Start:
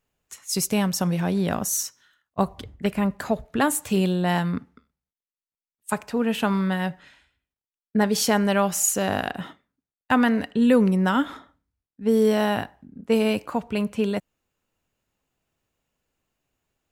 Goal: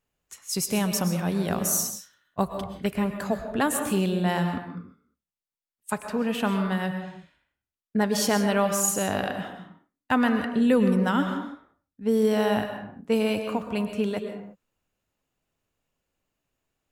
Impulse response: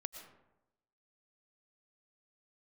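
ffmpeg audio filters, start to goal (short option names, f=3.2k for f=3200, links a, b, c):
-filter_complex "[0:a]asettb=1/sr,asplit=3[a][b][c];[a]atrim=end=0.684[d];[b]atrim=start=0.68:end=2.94,asetpts=PTS-STARTPTS,afade=t=in:d=0.004:c=qsin,afade=t=out:st=2.256:d=0.004:c=qsin,highshelf=f=8.4k:g=7[e];[c]atrim=start=2.936[f];[d][e]acrossfade=d=0.004:c1=hsin:c2=qsin[g];[g][f]acrossfade=d=0.004:c1=qsin:c2=hsin[h];[1:a]atrim=start_sample=2205,afade=t=out:st=0.38:d=0.01,atrim=end_sample=17199,asetrate=40131,aresample=44100[i];[h][i]afir=irnorm=-1:irlink=0"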